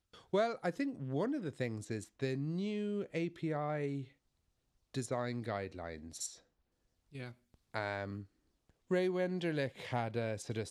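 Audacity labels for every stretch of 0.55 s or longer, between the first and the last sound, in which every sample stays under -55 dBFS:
4.110000	4.940000	silence
6.400000	7.130000	silence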